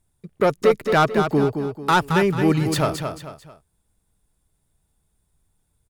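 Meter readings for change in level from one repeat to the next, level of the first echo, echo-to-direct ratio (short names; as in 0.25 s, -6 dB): -9.0 dB, -7.0 dB, -6.5 dB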